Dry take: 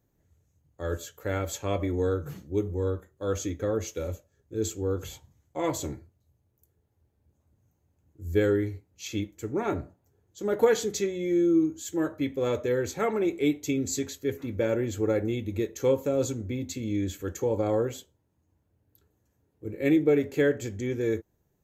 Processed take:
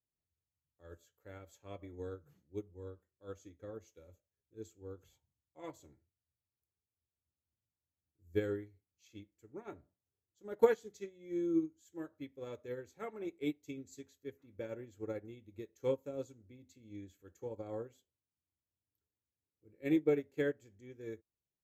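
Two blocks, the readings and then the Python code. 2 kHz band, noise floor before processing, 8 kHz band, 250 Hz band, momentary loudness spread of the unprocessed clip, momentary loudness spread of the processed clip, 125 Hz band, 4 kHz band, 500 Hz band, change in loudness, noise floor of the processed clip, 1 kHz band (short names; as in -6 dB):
-13.0 dB, -73 dBFS, under -25 dB, -12.5 dB, 11 LU, 21 LU, -17.5 dB, -18.0 dB, -12.0 dB, -11.0 dB, under -85 dBFS, -13.0 dB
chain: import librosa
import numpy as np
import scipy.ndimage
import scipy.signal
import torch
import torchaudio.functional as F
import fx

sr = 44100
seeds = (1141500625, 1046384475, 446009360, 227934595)

y = fx.upward_expand(x, sr, threshold_db=-32.0, expansion=2.5)
y = y * 10.0 ** (-3.5 / 20.0)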